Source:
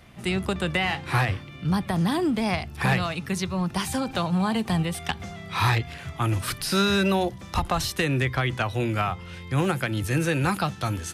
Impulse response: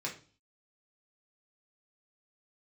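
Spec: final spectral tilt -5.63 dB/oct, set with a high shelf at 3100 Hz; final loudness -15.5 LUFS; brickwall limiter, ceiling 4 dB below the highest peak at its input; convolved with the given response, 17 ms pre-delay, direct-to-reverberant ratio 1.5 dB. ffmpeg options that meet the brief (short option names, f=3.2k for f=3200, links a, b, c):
-filter_complex "[0:a]highshelf=f=3.1k:g=-6,alimiter=limit=-17dB:level=0:latency=1,asplit=2[a][b];[1:a]atrim=start_sample=2205,adelay=17[c];[b][c]afir=irnorm=-1:irlink=0,volume=-4dB[d];[a][d]amix=inputs=2:normalize=0,volume=9.5dB"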